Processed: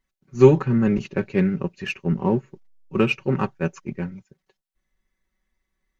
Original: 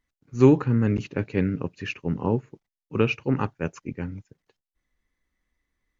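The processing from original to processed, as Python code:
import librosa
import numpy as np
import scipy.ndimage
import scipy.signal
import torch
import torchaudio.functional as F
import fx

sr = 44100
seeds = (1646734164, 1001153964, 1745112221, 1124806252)

p1 = x + 0.74 * np.pad(x, (int(5.3 * sr / 1000.0), 0))[:len(x)]
p2 = fx.backlash(p1, sr, play_db=-25.5)
p3 = p1 + (p2 * 10.0 ** (-8.5 / 20.0))
y = p3 * 10.0 ** (-1.0 / 20.0)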